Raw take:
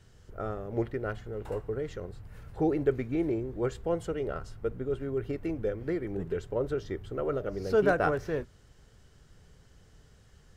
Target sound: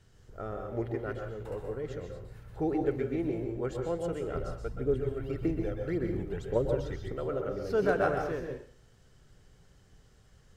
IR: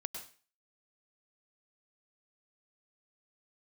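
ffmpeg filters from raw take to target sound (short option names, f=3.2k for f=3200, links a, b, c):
-filter_complex "[0:a]asettb=1/sr,asplit=3[a][b][c];[a]atrim=end=4.344[d];[b]atrim=start=4.34:end=7.12,asetpts=PTS-STARTPTS,afade=t=in:d=0.004:c=qsin,afade=t=out:st=2.776:d=0.004:c=qsin,aphaser=in_gain=1:out_gain=1:delay=1.6:decay=0.63:speed=1.8:type=triangular[e];[c]atrim=start=7.116[f];[d][e]acrossfade=d=0.004:c1=hsin:c2=qsin[g];[g][f]acrossfade=d=0.004:c1=qsin:c2=hsin[h];[1:a]atrim=start_sample=2205,asetrate=35280,aresample=44100[i];[h][i]afir=irnorm=-1:irlink=0,volume=-2.5dB"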